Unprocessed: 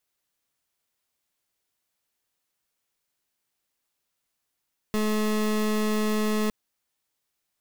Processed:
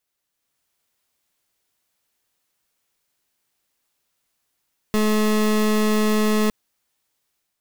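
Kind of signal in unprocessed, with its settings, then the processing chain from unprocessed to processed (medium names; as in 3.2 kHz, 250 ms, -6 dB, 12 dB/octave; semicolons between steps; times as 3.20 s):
pulse 214 Hz, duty 28% -24.5 dBFS 1.56 s
level rider gain up to 6 dB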